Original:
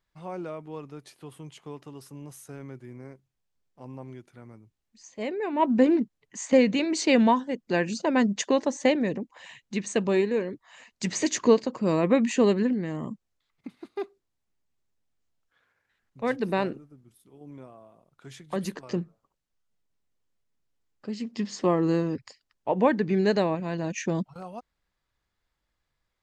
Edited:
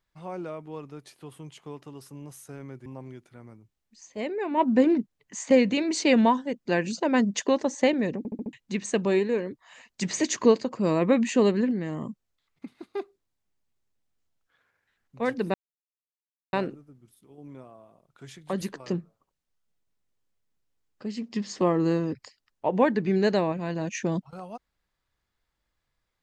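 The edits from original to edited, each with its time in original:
2.86–3.88 s: delete
9.20 s: stutter in place 0.07 s, 5 plays
16.56 s: insert silence 0.99 s

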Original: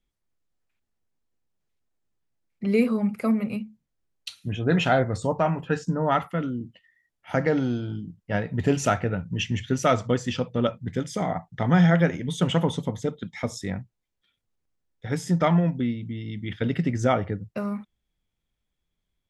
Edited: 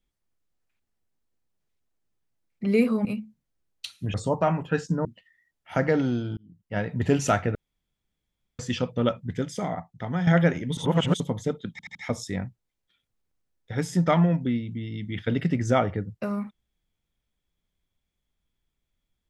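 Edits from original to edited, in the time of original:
3.05–3.48 s: delete
4.57–5.12 s: delete
6.03–6.63 s: delete
7.95–8.48 s: fade in
9.13–10.17 s: room tone
10.84–11.85 s: fade out, to -10.5 dB
12.35–12.78 s: reverse
13.29 s: stutter 0.08 s, 4 plays

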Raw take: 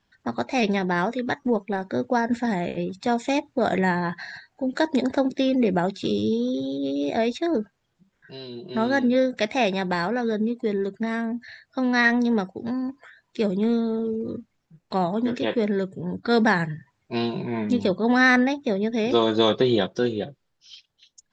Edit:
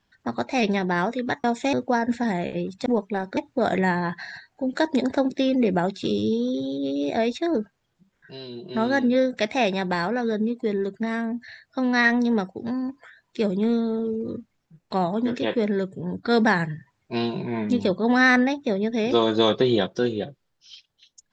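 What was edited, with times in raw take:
1.44–1.95 s: swap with 3.08–3.37 s

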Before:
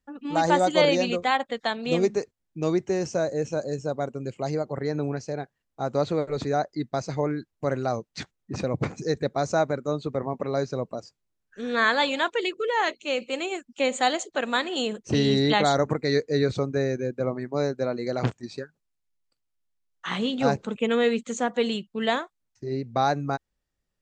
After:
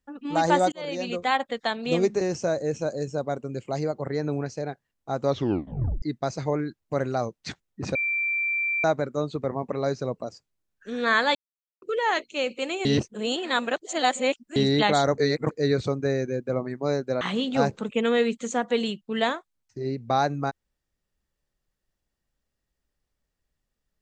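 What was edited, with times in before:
0.72–1.34 s: fade in
2.21–2.92 s: delete
5.98 s: tape stop 0.75 s
8.66–9.55 s: bleep 2.35 kHz -23 dBFS
12.06–12.53 s: mute
13.56–15.27 s: reverse
15.89–16.22 s: reverse
17.92–20.07 s: delete

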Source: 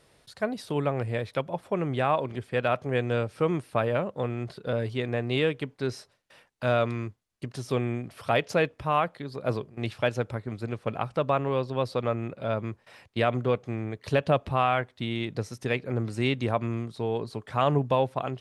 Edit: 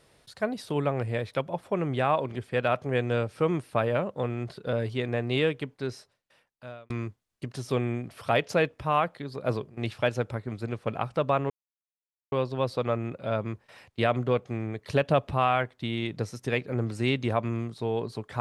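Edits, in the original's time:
5.46–6.90 s: fade out
11.50 s: insert silence 0.82 s

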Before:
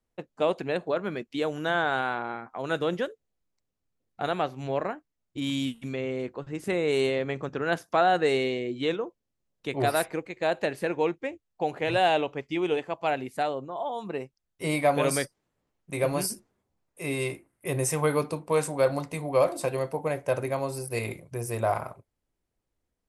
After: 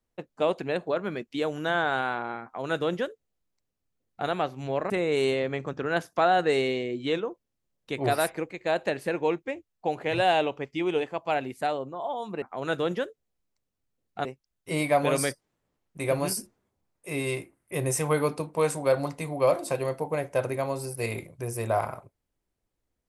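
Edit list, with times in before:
2.44–4.27 s: copy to 14.18 s
4.90–6.66 s: delete

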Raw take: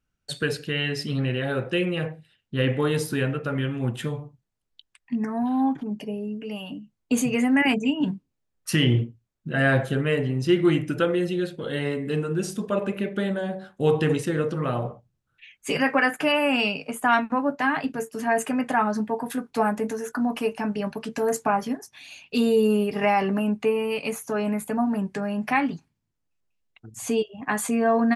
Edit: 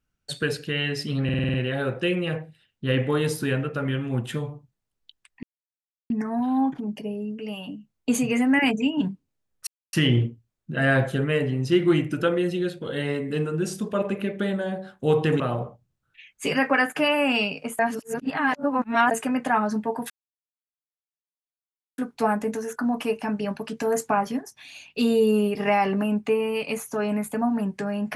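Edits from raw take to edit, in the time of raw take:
1.24 s: stutter 0.05 s, 7 plays
5.13 s: insert silence 0.67 s
8.70 s: insert silence 0.26 s
14.17–14.64 s: delete
17.03–18.35 s: reverse
19.34 s: insert silence 1.88 s

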